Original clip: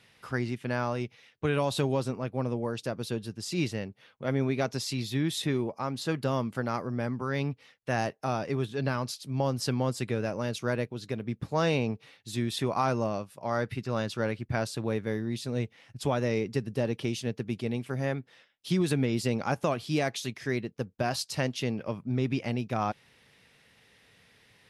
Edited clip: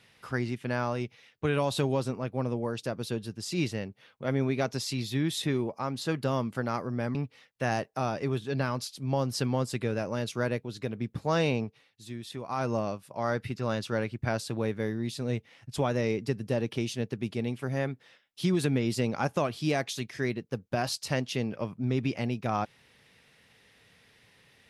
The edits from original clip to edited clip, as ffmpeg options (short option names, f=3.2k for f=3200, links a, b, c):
-filter_complex "[0:a]asplit=4[a][b][c][d];[a]atrim=end=7.152[e];[b]atrim=start=7.418:end=12.09,asetpts=PTS-STARTPTS,afade=t=out:st=4.412:d=0.26:silence=0.334965[f];[c]atrim=start=12.09:end=12.74,asetpts=PTS-STARTPTS,volume=-9.5dB[g];[d]atrim=start=12.74,asetpts=PTS-STARTPTS,afade=t=in:d=0.26:silence=0.334965[h];[f][g][h]concat=n=3:v=0:a=1[i];[e][i]acrossfade=d=0.004:c1=hsin:c2=hsin"